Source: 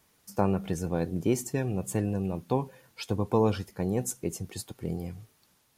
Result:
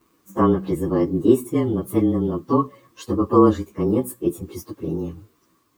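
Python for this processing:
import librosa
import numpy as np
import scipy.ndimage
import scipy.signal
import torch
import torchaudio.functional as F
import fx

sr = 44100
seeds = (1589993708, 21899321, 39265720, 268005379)

y = fx.partial_stretch(x, sr, pct=109)
y = fx.small_body(y, sr, hz=(320.0, 1100.0), ring_ms=30, db=16)
y = y * 10.0 ** (3.5 / 20.0)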